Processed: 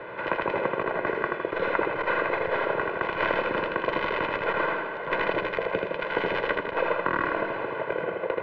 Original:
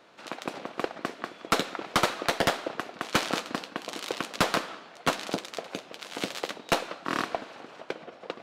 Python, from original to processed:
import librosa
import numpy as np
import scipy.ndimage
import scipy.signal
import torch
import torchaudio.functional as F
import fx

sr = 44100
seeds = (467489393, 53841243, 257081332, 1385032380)

p1 = fx.tracing_dist(x, sr, depth_ms=0.042)
p2 = scipy.signal.sosfilt(scipy.signal.butter(4, 2100.0, 'lowpass', fs=sr, output='sos'), p1)
p3 = fx.peak_eq(p2, sr, hz=690.0, db=-2.0, octaves=1.8)
p4 = fx.notch(p3, sr, hz=1300.0, q=11.0)
p5 = p4 + 0.7 * np.pad(p4, (int(2.0 * sr / 1000.0), 0))[:len(p4)]
p6 = fx.over_compress(p5, sr, threshold_db=-35.0, ratio=-1.0)
p7 = p6 + fx.echo_feedback(p6, sr, ms=80, feedback_pct=40, wet_db=-3.5, dry=0)
p8 = fx.band_squash(p7, sr, depth_pct=40)
y = p8 * 10.0 ** (7.5 / 20.0)